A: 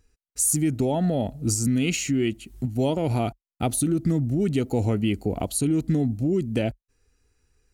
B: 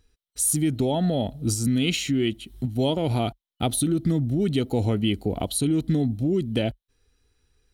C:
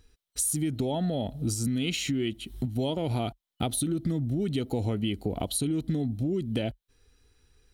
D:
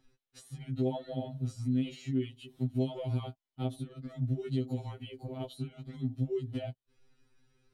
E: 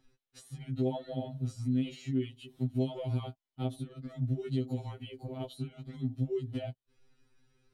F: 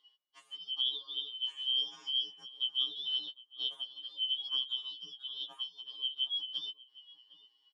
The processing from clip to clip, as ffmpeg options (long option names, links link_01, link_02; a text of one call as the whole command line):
ffmpeg -i in.wav -af "superequalizer=13b=2.51:15b=0.562" out.wav
ffmpeg -i in.wav -af "acompressor=threshold=-32dB:ratio=3,volume=3.5dB" out.wav
ffmpeg -i in.wav -filter_complex "[0:a]acrossover=split=1100|3600[link_01][link_02][link_03];[link_01]acompressor=threshold=-29dB:ratio=4[link_04];[link_02]acompressor=threshold=-50dB:ratio=4[link_05];[link_03]acompressor=threshold=-47dB:ratio=4[link_06];[link_04][link_05][link_06]amix=inputs=3:normalize=0,aemphasis=mode=reproduction:type=50kf,afftfilt=real='re*2.45*eq(mod(b,6),0)':imag='im*2.45*eq(mod(b,6),0)':win_size=2048:overlap=0.75,volume=-1dB" out.wav
ffmpeg -i in.wav -af anull out.wav
ffmpeg -i in.wav -filter_complex "[0:a]afftfilt=real='real(if(lt(b,272),68*(eq(floor(b/68),0)*2+eq(floor(b/68),1)*3+eq(floor(b/68),2)*0+eq(floor(b/68),3)*1)+mod(b,68),b),0)':imag='imag(if(lt(b,272),68*(eq(floor(b/68),0)*2+eq(floor(b/68),1)*3+eq(floor(b/68),2)*0+eq(floor(b/68),3)*1)+mod(b,68),b),0)':win_size=2048:overlap=0.75,highpass=340,lowpass=5100,asplit=2[link_01][link_02];[link_02]adelay=758,volume=-15dB,highshelf=frequency=4000:gain=-17.1[link_03];[link_01][link_03]amix=inputs=2:normalize=0,volume=-2dB" out.wav